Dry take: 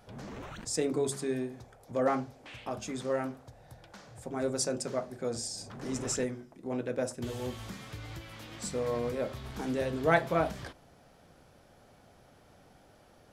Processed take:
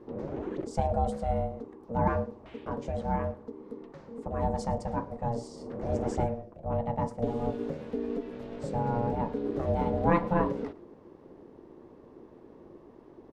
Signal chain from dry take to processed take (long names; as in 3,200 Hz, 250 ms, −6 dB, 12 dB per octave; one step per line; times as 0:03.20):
spectral tilt −4 dB per octave
on a send: single-tap delay 110 ms −22.5 dB
on the sum: ring modulation 350 Hz
high-shelf EQ 8,700 Hz −6 dB